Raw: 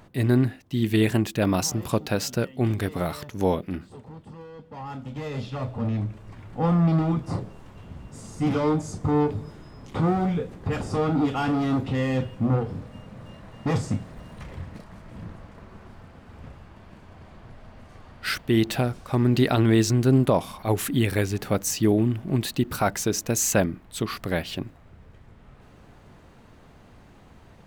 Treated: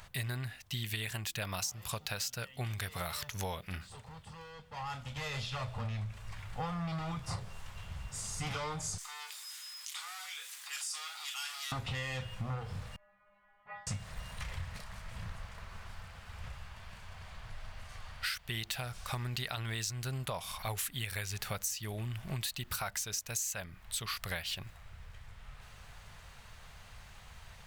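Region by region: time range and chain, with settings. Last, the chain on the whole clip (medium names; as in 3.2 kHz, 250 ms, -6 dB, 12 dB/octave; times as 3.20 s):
8.98–11.72 s: high-pass 1.1 kHz + differentiator + level flattener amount 50%
12.96–13.87 s: low-pass 2.2 kHz 24 dB/octave + resonant low shelf 440 Hz -9.5 dB, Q 1.5 + inharmonic resonator 200 Hz, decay 0.6 s, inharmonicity 0.002
whole clip: amplifier tone stack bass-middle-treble 10-0-10; compression 10:1, threshold -42 dBFS; trim +8 dB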